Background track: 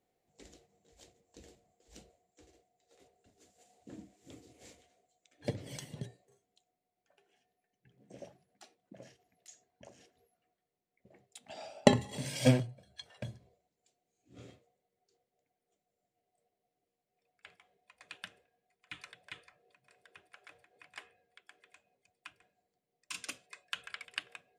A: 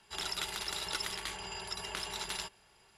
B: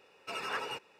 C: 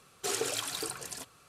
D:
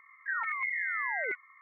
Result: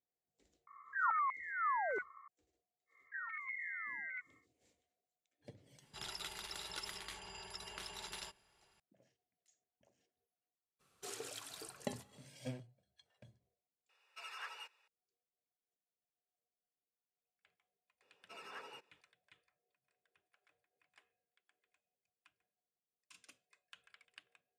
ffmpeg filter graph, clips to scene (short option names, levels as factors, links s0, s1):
-filter_complex "[4:a]asplit=2[s0][s1];[2:a]asplit=2[s2][s3];[0:a]volume=0.106[s4];[s0]highshelf=f=1600:t=q:w=3:g=-8.5[s5];[s1]highpass=f=1200:w=0.5412,highpass=f=1200:w=1.3066[s6];[s2]highpass=1100[s7];[s3]highpass=140[s8];[s4]asplit=2[s9][s10];[s9]atrim=end=13.894[s11];[s7]atrim=end=0.99,asetpts=PTS-STARTPTS,volume=0.335[s12];[s10]atrim=start=14.876[s13];[s5]atrim=end=1.61,asetpts=PTS-STARTPTS,volume=0.841,afade=t=in:d=0.004:c=hsin,afade=t=out:st=1.606:d=0.004:c=hsin,adelay=670[s14];[s6]atrim=end=1.61,asetpts=PTS-STARTPTS,volume=0.282,afade=t=in:d=0.1,afade=t=out:st=1.51:d=0.1,adelay=2860[s15];[1:a]atrim=end=2.97,asetpts=PTS-STARTPTS,volume=0.355,afade=t=in:d=0.004:c=hsin,afade=t=out:st=2.966:d=0.004:c=hsin,adelay=5830[s16];[3:a]atrim=end=1.48,asetpts=PTS-STARTPTS,volume=0.188,afade=t=in:d=0.02,afade=t=out:st=1.46:d=0.02,adelay=10790[s17];[s8]atrim=end=0.99,asetpts=PTS-STARTPTS,volume=0.188,afade=t=in:d=0.004:c=hsin,afade=t=out:st=0.986:d=0.004:c=hsin,adelay=18020[s18];[s11][s12]acrossfade=d=0.004:c1=hsin:c2=hsin[s19];[s19][s13]acrossfade=d=0.004:c1=hsin:c2=hsin[s20];[s20][s14][s15][s16][s17][s18]amix=inputs=6:normalize=0"